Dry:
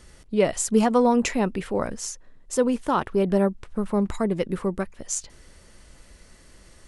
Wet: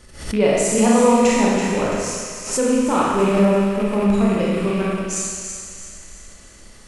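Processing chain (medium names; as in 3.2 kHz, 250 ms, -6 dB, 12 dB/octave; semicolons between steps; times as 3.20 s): rattle on loud lows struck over -31 dBFS, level -25 dBFS; on a send: feedback echo behind a high-pass 334 ms, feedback 47%, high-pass 1.4 kHz, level -8 dB; on the sum: Schroeder reverb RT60 1.7 s, combs from 27 ms, DRR -6 dB; swell ahead of each attack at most 100 dB/s; trim -1 dB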